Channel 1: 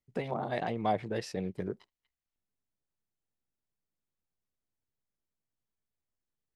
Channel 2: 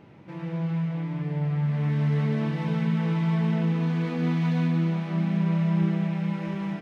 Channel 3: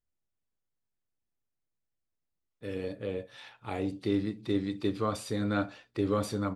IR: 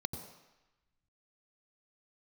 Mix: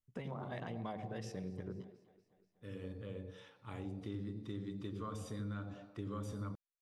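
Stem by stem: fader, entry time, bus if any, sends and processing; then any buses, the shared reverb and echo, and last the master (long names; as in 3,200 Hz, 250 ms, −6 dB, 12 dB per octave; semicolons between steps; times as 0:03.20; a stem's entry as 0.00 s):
−6.0 dB, 0.00 s, send −9.5 dB, echo send −23.5 dB, no processing
muted
−9.0 dB, 0.00 s, send −7.5 dB, no echo send, no processing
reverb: on, RT60 1.0 s, pre-delay 84 ms
echo: repeating echo 241 ms, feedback 58%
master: downward compressor 4 to 1, threshold −39 dBFS, peak gain reduction 7.5 dB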